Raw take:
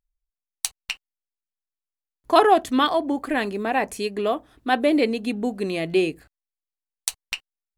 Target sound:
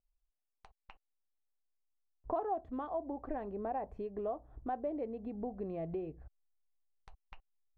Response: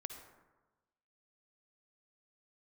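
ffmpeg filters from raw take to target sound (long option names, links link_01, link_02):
-af "acompressor=threshold=-34dB:ratio=4,lowpass=frequency=750:width_type=q:width=1.5,asubboost=boost=8.5:cutoff=88,volume=-3.5dB"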